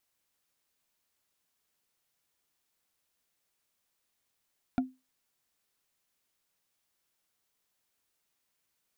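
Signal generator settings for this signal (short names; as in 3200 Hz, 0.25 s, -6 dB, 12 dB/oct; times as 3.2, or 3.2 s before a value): wood hit, lowest mode 258 Hz, decay 0.24 s, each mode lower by 6 dB, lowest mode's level -21 dB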